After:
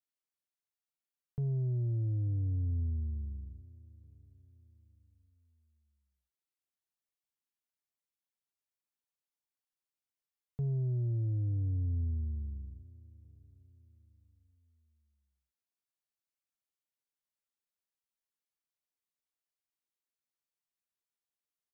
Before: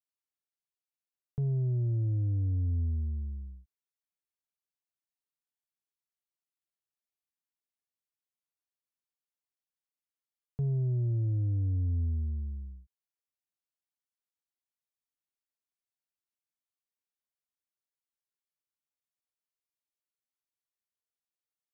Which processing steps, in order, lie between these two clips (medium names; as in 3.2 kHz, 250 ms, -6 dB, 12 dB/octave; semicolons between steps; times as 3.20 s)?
feedback delay 886 ms, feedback 39%, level -22 dB; trim -3 dB